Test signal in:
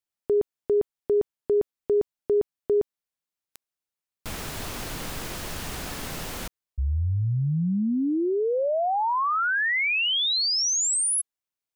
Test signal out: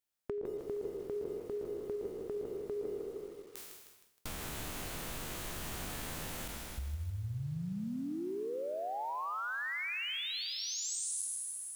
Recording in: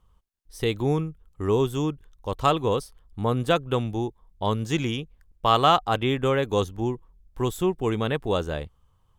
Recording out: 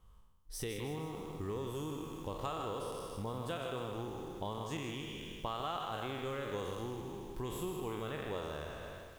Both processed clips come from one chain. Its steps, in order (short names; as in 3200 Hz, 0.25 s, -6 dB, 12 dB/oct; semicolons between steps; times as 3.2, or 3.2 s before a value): spectral trails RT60 1.19 s; dynamic EQ 5100 Hz, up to -6 dB, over -45 dBFS, Q 3.7; vibrato 2.7 Hz 10 cents; high shelf 7000 Hz +3.5 dB; compressor 4:1, threshold -38 dBFS; on a send: dark delay 83 ms, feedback 48%, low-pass 3600 Hz, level -23 dB; on the sum: lo-fi delay 0.156 s, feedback 55%, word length 9-bit, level -7.5 dB; gain -2.5 dB